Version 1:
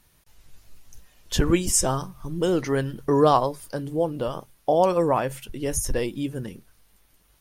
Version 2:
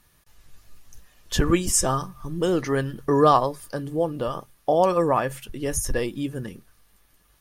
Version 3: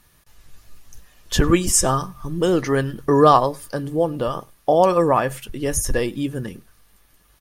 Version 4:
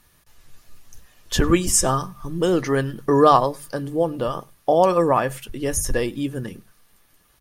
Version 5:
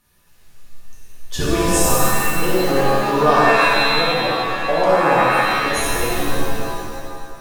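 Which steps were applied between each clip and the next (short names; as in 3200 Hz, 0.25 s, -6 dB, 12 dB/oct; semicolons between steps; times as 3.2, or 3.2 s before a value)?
small resonant body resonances 1200/1700 Hz, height 9 dB
outdoor echo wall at 17 m, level -27 dB; gain +4 dB
notches 50/100/150/200 Hz; gain -1 dB
shimmer reverb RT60 2 s, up +7 st, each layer -2 dB, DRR -6.5 dB; gain -7 dB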